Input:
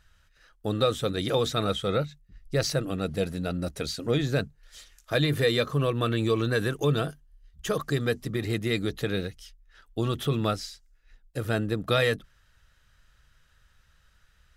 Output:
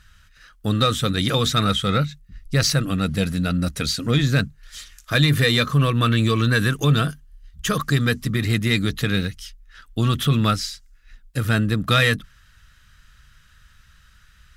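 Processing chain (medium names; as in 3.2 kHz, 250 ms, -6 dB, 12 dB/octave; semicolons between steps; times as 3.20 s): high-order bell 540 Hz -9.5 dB; Chebyshev shaper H 5 -25 dB, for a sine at -13 dBFS; trim +8 dB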